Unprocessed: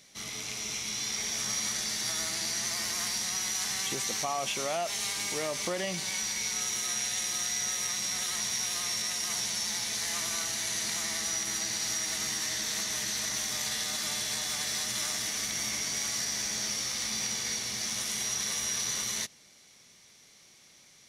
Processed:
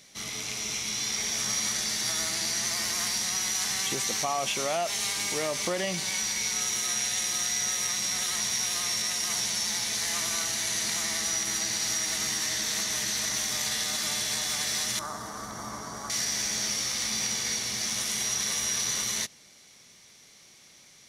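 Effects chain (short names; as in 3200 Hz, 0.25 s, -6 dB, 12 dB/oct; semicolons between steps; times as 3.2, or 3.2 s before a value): 14.99–16.1 resonant high shelf 1700 Hz -13 dB, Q 3; gain +3 dB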